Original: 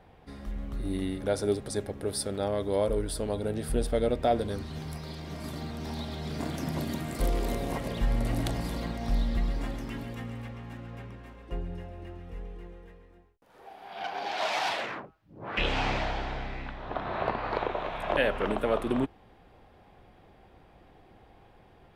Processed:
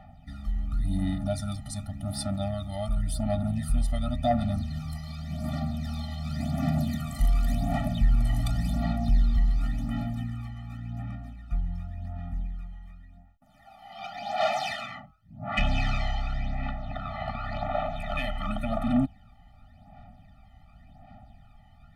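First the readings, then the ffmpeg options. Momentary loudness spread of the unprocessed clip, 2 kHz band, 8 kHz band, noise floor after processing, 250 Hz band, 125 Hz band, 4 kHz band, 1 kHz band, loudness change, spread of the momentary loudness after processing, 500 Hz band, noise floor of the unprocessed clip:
15 LU, -2.5 dB, -2.5 dB, -55 dBFS, +3.0 dB, +6.0 dB, -1.5 dB, 0.0 dB, +1.5 dB, 11 LU, -5.0 dB, -57 dBFS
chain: -af "aphaser=in_gain=1:out_gain=1:delay=1:decay=0.63:speed=0.9:type=sinusoidal,asoftclip=type=tanh:threshold=-13.5dB,afftfilt=real='re*eq(mod(floor(b*sr/1024/290),2),0)':imag='im*eq(mod(floor(b*sr/1024/290),2),0)':win_size=1024:overlap=0.75"

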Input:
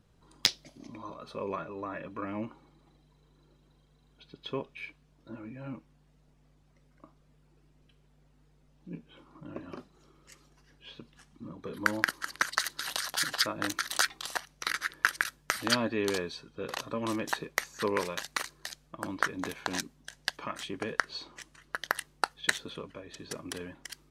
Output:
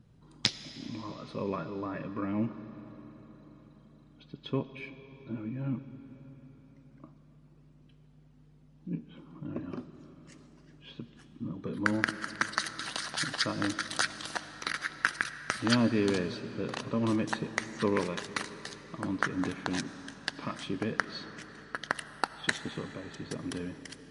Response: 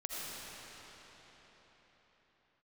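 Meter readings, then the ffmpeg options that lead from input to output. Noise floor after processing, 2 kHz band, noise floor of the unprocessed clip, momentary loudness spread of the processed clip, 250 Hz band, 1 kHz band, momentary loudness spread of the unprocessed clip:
-59 dBFS, -1.5 dB, -65 dBFS, 19 LU, +6.5 dB, -1.0 dB, 18 LU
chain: -filter_complex "[0:a]equalizer=f=125:t=o:w=1:g=10,equalizer=f=250:t=o:w=1:g=7,equalizer=f=8k:t=o:w=1:g=-4,asplit=2[a][b];[1:a]atrim=start_sample=2205[c];[b][c]afir=irnorm=-1:irlink=0,volume=-12.5dB[d];[a][d]amix=inputs=2:normalize=0,volume=-2.5dB" -ar 32000 -c:a libmp3lame -b:a 48k

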